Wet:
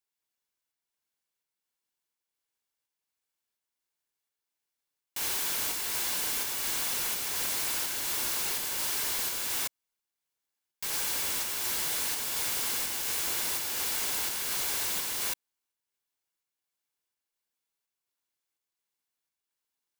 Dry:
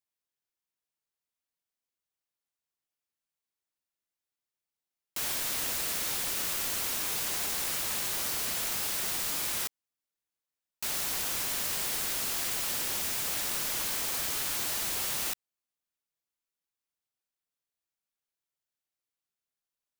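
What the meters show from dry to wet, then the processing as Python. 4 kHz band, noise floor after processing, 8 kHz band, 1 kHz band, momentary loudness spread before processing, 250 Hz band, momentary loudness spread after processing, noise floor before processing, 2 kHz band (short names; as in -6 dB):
+1.0 dB, under -85 dBFS, +0.5 dB, +0.5 dB, 2 LU, -1.5 dB, 2 LU, under -85 dBFS, +1.0 dB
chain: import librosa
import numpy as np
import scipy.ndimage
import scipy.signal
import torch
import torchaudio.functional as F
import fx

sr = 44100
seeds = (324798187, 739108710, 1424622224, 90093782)

p1 = x + 0.5 * np.pad(x, (int(1.6 * sr / 1000.0), 0))[:len(x)]
p2 = 10.0 ** (-28.5 / 20.0) * np.tanh(p1 / 10.0 ** (-28.5 / 20.0))
p3 = fx.volume_shaper(p2, sr, bpm=84, per_beat=1, depth_db=-8, release_ms=218.0, shape='slow start')
p4 = p2 + (p3 * librosa.db_to_amplitude(-2.0))
p5 = fx.highpass(p4, sr, hz=230.0, slope=6)
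p6 = p5 * np.sign(np.sin(2.0 * np.pi * 240.0 * np.arange(len(p5)) / sr))
y = p6 * librosa.db_to_amplitude(-2.0)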